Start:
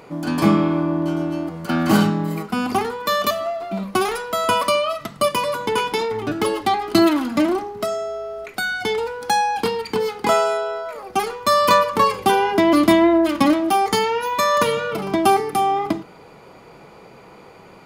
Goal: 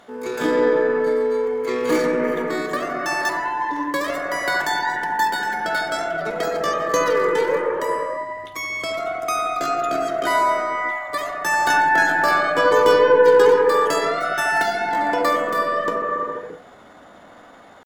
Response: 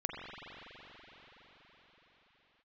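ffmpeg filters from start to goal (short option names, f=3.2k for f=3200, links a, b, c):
-filter_complex "[0:a]aeval=exprs='0.75*(cos(1*acos(clip(val(0)/0.75,-1,1)))-cos(1*PI/2))+0.0168*(cos(2*acos(clip(val(0)/0.75,-1,1)))-cos(2*PI/2))':c=same,asetrate=66075,aresample=44100,atempo=0.66742[a];[1:a]atrim=start_sample=2205,afade=t=out:st=0.43:d=0.01,atrim=end_sample=19404,asetrate=26460,aresample=44100[b];[a][b]afir=irnorm=-1:irlink=0,volume=-7dB"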